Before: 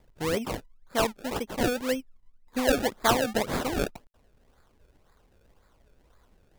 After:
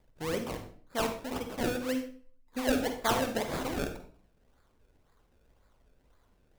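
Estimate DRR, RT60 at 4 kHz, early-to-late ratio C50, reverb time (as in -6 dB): 6.0 dB, 0.40 s, 7.5 dB, 0.45 s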